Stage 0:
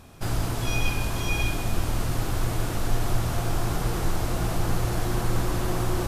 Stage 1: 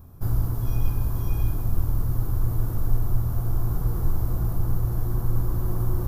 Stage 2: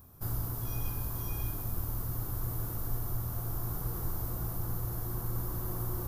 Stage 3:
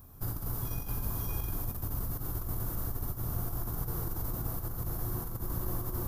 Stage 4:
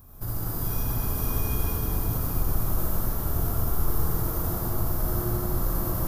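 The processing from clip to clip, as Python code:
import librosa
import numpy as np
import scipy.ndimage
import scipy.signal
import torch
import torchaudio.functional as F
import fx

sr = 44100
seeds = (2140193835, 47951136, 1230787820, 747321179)

y1 = fx.curve_eq(x, sr, hz=(110.0, 190.0, 470.0, 670.0, 1100.0, 2500.0, 5600.0, 8400.0, 15000.0), db=(0, -7, -11, -15, -11, -27, -20, -20, 3))
y1 = fx.rider(y1, sr, range_db=10, speed_s=0.5)
y1 = y1 * 10.0 ** (3.5 / 20.0)
y2 = fx.tilt_eq(y1, sr, slope=2.0)
y2 = y2 * 10.0 ** (-4.0 / 20.0)
y3 = fx.octave_divider(y2, sr, octaves=2, level_db=-3.0)
y3 = fx.over_compress(y3, sr, threshold_db=-33.0, ratio=-0.5)
y3 = y3 + 10.0 ** (-8.5 / 20.0) * np.pad(y3, (int(90 * sr / 1000.0), 0))[:len(y3)]
y4 = fx.rev_freeverb(y3, sr, rt60_s=4.5, hf_ratio=0.9, predelay_ms=35, drr_db=-7.5)
y4 = y4 * 10.0 ** (1.5 / 20.0)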